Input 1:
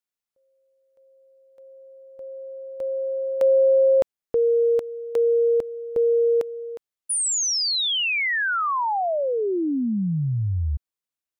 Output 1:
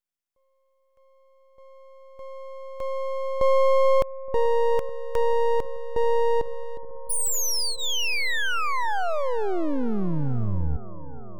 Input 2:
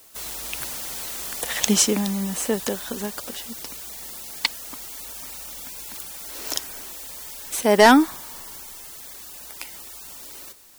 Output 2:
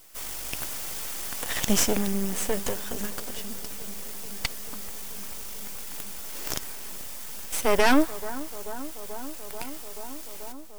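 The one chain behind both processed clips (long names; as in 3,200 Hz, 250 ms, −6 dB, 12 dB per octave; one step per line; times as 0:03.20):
notch filter 4,000 Hz, Q 6.2
half-wave rectification
on a send: bucket-brigade delay 435 ms, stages 4,096, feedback 83%, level −18.5 dB
on the sum: boost into a limiter +9 dB
level −7 dB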